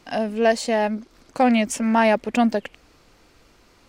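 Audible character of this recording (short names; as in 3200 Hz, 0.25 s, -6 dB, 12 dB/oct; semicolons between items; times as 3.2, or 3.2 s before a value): noise floor -57 dBFS; spectral tilt -4.5 dB/oct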